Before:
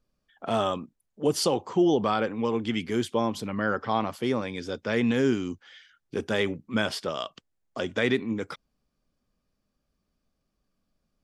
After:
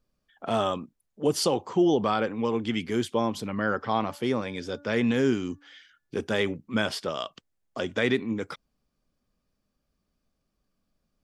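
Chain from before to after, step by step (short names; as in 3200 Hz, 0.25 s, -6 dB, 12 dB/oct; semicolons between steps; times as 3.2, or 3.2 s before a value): 3.95–6.16 de-hum 288 Hz, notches 6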